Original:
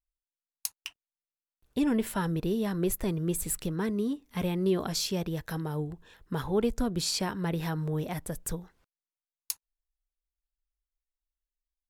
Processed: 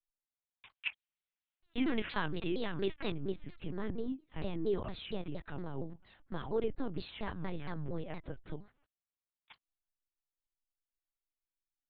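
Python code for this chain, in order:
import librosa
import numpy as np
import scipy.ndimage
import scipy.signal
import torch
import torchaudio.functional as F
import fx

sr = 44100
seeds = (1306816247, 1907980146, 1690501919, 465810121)

y = fx.lpc_vocoder(x, sr, seeds[0], excitation='pitch_kept', order=10)
y = fx.peak_eq(y, sr, hz=2900.0, db=11.5, octaves=2.7, at=(0.75, 3.15))
y = fx.vibrato_shape(y, sr, shape='saw_down', rate_hz=4.3, depth_cents=250.0)
y = y * librosa.db_to_amplitude(-6.0)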